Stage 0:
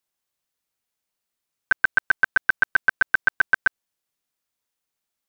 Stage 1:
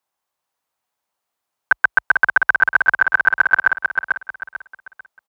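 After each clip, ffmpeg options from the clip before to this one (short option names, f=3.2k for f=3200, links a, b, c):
-filter_complex "[0:a]highpass=f=47:w=0.5412,highpass=f=47:w=1.3066,equalizer=f=890:w=0.91:g=12.5,asplit=2[a][b];[b]aecho=0:1:444|888|1332|1776:0.562|0.174|0.054|0.0168[c];[a][c]amix=inputs=2:normalize=0,volume=-1dB"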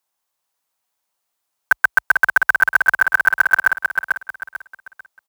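-af "acrusher=bits=7:mode=log:mix=0:aa=0.000001,highshelf=f=3.2k:g=8,volume=-1.5dB"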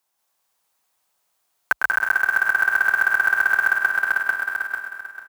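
-filter_complex "[0:a]asplit=2[a][b];[b]aecho=0:1:186.6|221.6:0.794|0.398[c];[a][c]amix=inputs=2:normalize=0,acompressor=threshold=-19dB:ratio=6,asplit=2[d][e];[e]aecho=0:1:103|206|309|412|515|618|721:0.376|0.222|0.131|0.0772|0.0455|0.0269|0.0159[f];[d][f]amix=inputs=2:normalize=0,volume=2dB"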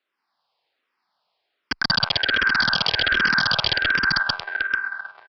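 -filter_complex "[0:a]highpass=190,aresample=11025,aeval=exprs='(mod(5.62*val(0)+1,2)-1)/5.62':c=same,aresample=44100,asplit=2[a][b];[b]afreqshift=-1.3[c];[a][c]amix=inputs=2:normalize=1,volume=5dB"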